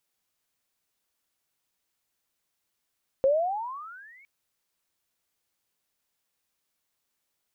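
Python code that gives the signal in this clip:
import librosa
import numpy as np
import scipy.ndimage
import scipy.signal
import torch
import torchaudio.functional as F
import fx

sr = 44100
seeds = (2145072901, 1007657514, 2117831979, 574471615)

y = fx.riser_tone(sr, length_s=1.01, level_db=-17.0, wave='sine', hz=523.0, rise_st=25.5, swell_db=-35)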